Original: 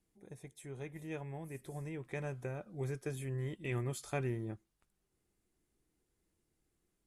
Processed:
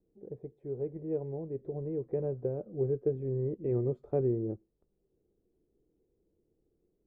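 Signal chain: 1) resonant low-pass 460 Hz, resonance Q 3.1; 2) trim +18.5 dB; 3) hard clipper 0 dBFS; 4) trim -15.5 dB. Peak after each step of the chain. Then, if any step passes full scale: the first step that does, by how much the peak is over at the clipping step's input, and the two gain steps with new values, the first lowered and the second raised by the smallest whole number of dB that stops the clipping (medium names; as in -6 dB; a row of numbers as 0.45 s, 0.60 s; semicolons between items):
-22.0 dBFS, -3.5 dBFS, -3.5 dBFS, -19.0 dBFS; nothing clips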